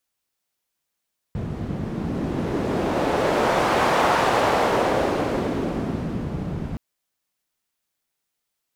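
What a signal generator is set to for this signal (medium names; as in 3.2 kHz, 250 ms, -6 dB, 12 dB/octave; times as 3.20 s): wind-like swept noise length 5.42 s, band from 150 Hz, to 810 Hz, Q 1.1, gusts 1, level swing 9 dB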